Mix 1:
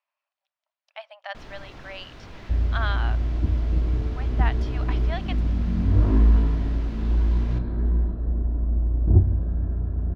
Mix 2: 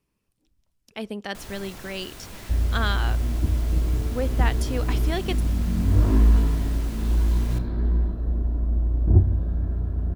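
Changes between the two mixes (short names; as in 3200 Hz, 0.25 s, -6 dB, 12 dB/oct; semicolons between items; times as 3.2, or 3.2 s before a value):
speech: remove brick-wall FIR high-pass 560 Hz; first sound: add bell 7900 Hz -5 dB 1.5 oct; master: remove air absorption 260 m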